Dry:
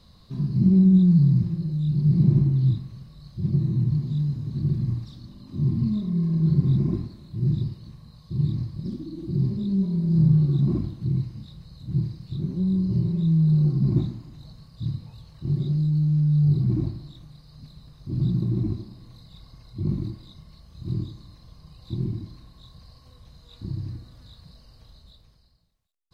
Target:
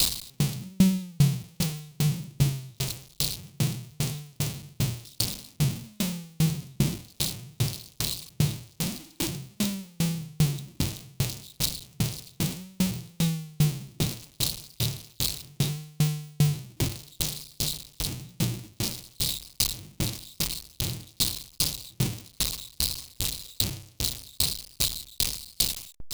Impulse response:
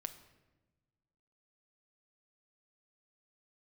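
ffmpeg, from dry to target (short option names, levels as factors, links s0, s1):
-af "aeval=exprs='val(0)+0.5*0.0631*sgn(val(0))':c=same,aexciter=amount=5.5:drive=3.9:freq=2300,aeval=exprs='val(0)*pow(10,-39*if(lt(mod(2.5*n/s,1),2*abs(2.5)/1000),1-mod(2.5*n/s,1)/(2*abs(2.5)/1000),(mod(2.5*n/s,1)-2*abs(2.5)/1000)/(1-2*abs(2.5)/1000))/20)':c=same"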